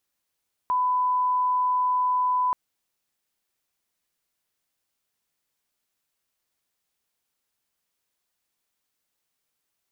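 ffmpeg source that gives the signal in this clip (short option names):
-f lavfi -i "sine=f=1000:d=1.83:r=44100,volume=-1.94dB"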